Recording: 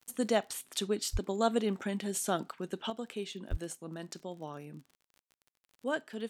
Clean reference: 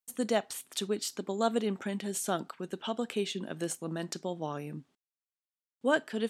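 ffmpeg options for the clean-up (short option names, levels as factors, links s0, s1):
-filter_complex "[0:a]adeclick=t=4,asplit=3[s0][s1][s2];[s0]afade=t=out:st=1.12:d=0.02[s3];[s1]highpass=f=140:w=0.5412,highpass=f=140:w=1.3066,afade=t=in:st=1.12:d=0.02,afade=t=out:st=1.24:d=0.02[s4];[s2]afade=t=in:st=1.24:d=0.02[s5];[s3][s4][s5]amix=inputs=3:normalize=0,asplit=3[s6][s7][s8];[s6]afade=t=out:st=3.5:d=0.02[s9];[s7]highpass=f=140:w=0.5412,highpass=f=140:w=1.3066,afade=t=in:st=3.5:d=0.02,afade=t=out:st=3.62:d=0.02[s10];[s8]afade=t=in:st=3.62:d=0.02[s11];[s9][s10][s11]amix=inputs=3:normalize=0,asetnsamples=n=441:p=0,asendcmd='2.9 volume volume 6.5dB',volume=1"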